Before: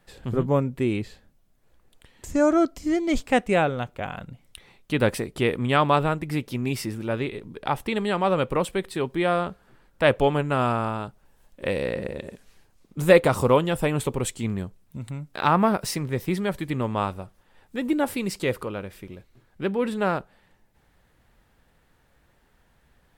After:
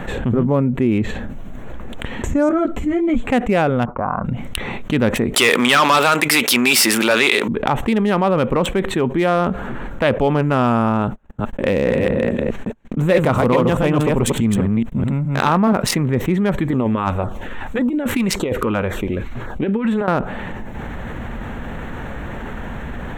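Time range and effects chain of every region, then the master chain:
0:02.49–0:03.30: parametric band 5,600 Hz −10 dB 0.6 octaves + string-ensemble chorus
0:03.85–0:04.25: downward expander −51 dBFS + transistor ladder low-pass 1,200 Hz, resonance 70%
0:05.34–0:07.48: spectral tilt +3.5 dB per octave + mid-hump overdrive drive 24 dB, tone 6,800 Hz, clips at −2 dBFS + high-pass filter 150 Hz
0:11.03–0:15.73: delay that plays each chunk backwards 211 ms, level −2.5 dB + noise gate −50 dBFS, range −38 dB
0:16.68–0:20.08: parametric band 150 Hz −6.5 dB 1.5 octaves + compressor whose output falls as the input rises −29 dBFS, ratio −0.5 + auto-filter notch saw down 1.8 Hz 220–3,000 Hz
whole clip: adaptive Wiener filter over 9 samples; parametric band 230 Hz +7 dB 0.36 octaves; envelope flattener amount 70%; level −3.5 dB

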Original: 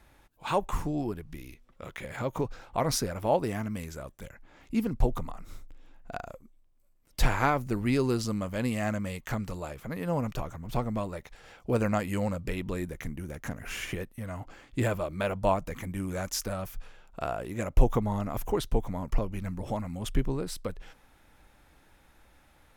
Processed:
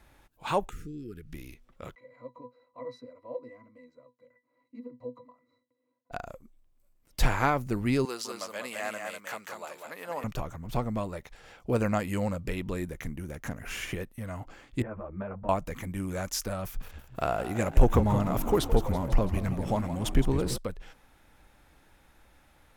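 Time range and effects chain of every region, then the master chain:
0:00.69–0:01.33: downward compressor 2 to 1, threshold −44 dBFS + linear-phase brick-wall band-stop 510–1,200 Hz
0:01.95–0:06.11: Chebyshev high-pass filter 400 Hz + resonances in every octave B, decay 0.14 s
0:08.05–0:10.24: high-pass filter 630 Hz + single-tap delay 198 ms −4.5 dB
0:14.82–0:15.49: low-pass filter 1,700 Hz 24 dB per octave + downward compressor 3 to 1, threshold −32 dBFS + string-ensemble chorus
0:16.64–0:20.58: echo with shifted repeats 166 ms, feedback 60%, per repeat +51 Hz, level −12.5 dB + leveller curve on the samples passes 1
whole clip: no processing

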